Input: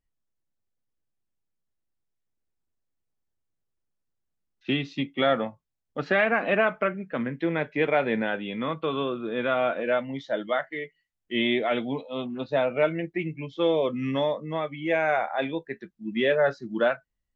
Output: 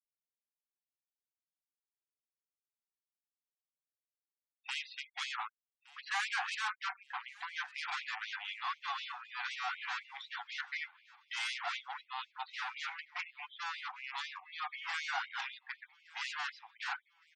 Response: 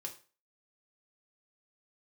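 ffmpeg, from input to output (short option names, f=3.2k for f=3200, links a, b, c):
-filter_complex "[0:a]aeval=exprs='(tanh(50.1*val(0)+0.75)-tanh(0.75))/50.1':c=same,tiltshelf=f=1.2k:g=3.5,afftfilt=real='re*gte(hypot(re,im),0.00251)':imag='im*gte(hypot(re,im),0.00251)':win_size=1024:overlap=0.75,asplit=2[a][b];[b]aecho=0:1:1166|2332|3498:0.0794|0.0389|0.0191[c];[a][c]amix=inputs=2:normalize=0,afftfilt=real='re*gte(b*sr/1024,690*pow(2100/690,0.5+0.5*sin(2*PI*4*pts/sr)))':imag='im*gte(b*sr/1024,690*pow(2100/690,0.5+0.5*sin(2*PI*4*pts/sr)))':win_size=1024:overlap=0.75,volume=5.5dB"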